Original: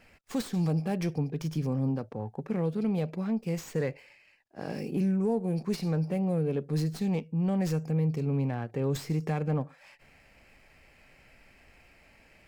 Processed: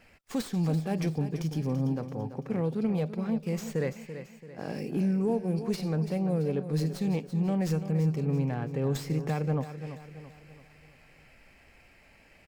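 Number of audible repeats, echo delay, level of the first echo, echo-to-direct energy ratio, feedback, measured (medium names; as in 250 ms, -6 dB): 4, 336 ms, -11.0 dB, -10.0 dB, 45%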